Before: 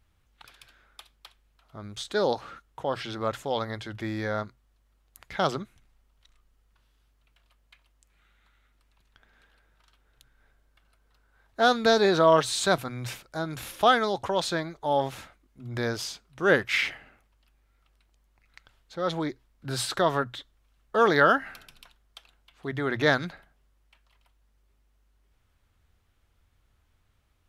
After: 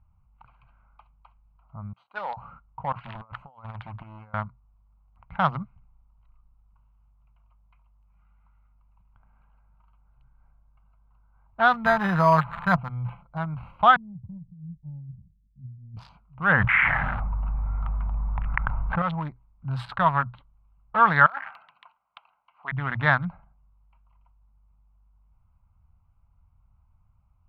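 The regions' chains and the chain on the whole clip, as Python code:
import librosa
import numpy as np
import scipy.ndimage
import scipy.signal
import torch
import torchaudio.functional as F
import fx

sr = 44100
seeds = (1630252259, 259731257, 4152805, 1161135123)

y = fx.chain(x, sr, fx.halfwave_gain(db=-3.0),
    fx.highpass(hz=560.0, slope=12),
    fx.upward_expand(threshold_db=-39.0, expansion=1.5), at=(1.93, 2.37))
y = fx.chain(y, sr, fx.low_shelf(hz=490.0, db=-7.5),
    fx.over_compress(threshold_db=-39.0, ratio=-0.5),
    fx.doppler_dist(depth_ms=0.81), at=(2.92, 4.34))
y = fx.chain(y, sr, fx.air_absorb(metres=150.0),
    fx.comb(ms=5.8, depth=0.45),
    fx.resample_bad(factor=8, down='none', up='hold'), at=(11.73, 13.38))
y = fx.chain(y, sr, fx.ladder_lowpass(hz=210.0, resonance_pct=40),
    fx.over_compress(threshold_db=-44.0, ratio=-0.5), at=(13.96, 15.97))
y = fx.chain(y, sr, fx.lowpass(hz=1900.0, slope=24),
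    fx.env_flatten(amount_pct=70), at=(16.52, 19.02))
y = fx.chain(y, sr, fx.highpass(hz=720.0, slope=12),
    fx.high_shelf(hz=10000.0, db=-4.5),
    fx.over_compress(threshold_db=-32.0, ratio=-1.0), at=(21.26, 22.72))
y = fx.wiener(y, sr, points=25)
y = fx.curve_eq(y, sr, hz=(180.0, 370.0, 960.0, 2900.0, 6400.0), db=(0, -26, 3, -7, -30))
y = y * librosa.db_to_amplitude(6.5)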